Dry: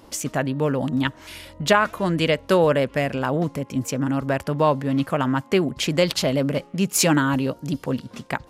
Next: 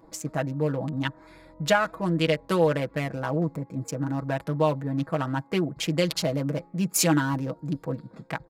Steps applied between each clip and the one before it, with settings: local Wiener filter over 15 samples; treble shelf 7.4 kHz +4.5 dB; comb 6.2 ms, depth 73%; trim -6.5 dB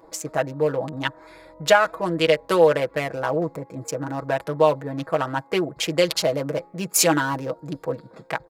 resonant low shelf 320 Hz -7.5 dB, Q 1.5; trim +5 dB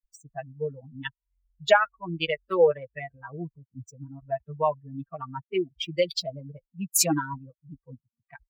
expander on every frequency bin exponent 3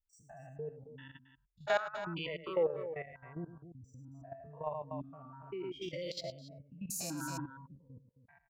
spectrogram pixelated in time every 100 ms; loudspeakers at several distances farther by 36 m -10 dB, 93 m -11 dB; level held to a coarse grid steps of 12 dB; trim -3.5 dB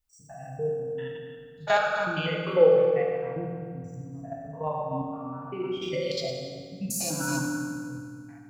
reverberation RT60 2.0 s, pre-delay 3 ms, DRR -1.5 dB; trim +7 dB

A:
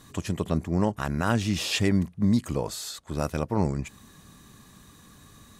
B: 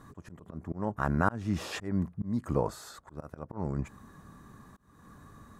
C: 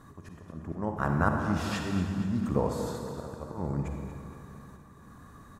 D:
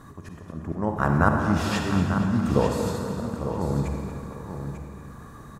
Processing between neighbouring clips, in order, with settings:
resonant high shelf 2 kHz -11.5 dB, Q 1.5; slow attack 338 ms
feedback delay 234 ms, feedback 56%, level -12 dB; on a send at -3 dB: reverberation RT60 2.3 s, pre-delay 38 ms
feedback delay 894 ms, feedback 16%, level -9 dB; trim +6 dB

